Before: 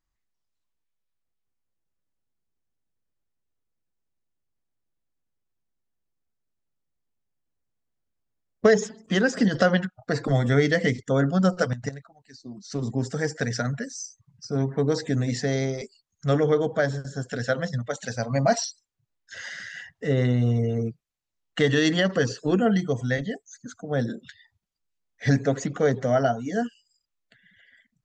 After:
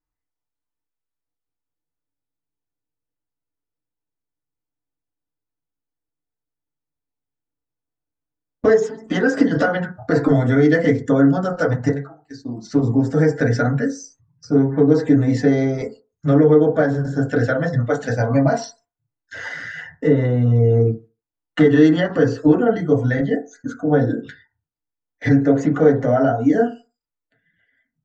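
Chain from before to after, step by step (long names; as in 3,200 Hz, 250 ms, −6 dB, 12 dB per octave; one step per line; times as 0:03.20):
noise gate −51 dBFS, range −15 dB
high-shelf EQ 2,500 Hz −6.5 dB, from 0:12.67 −12 dB
downward compressor 5 to 1, threshold −26 dBFS, peak gain reduction 11.5 dB
feedback delay network reverb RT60 0.3 s, low-frequency decay 0.85×, high-frequency decay 0.25×, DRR −3 dB
level +7.5 dB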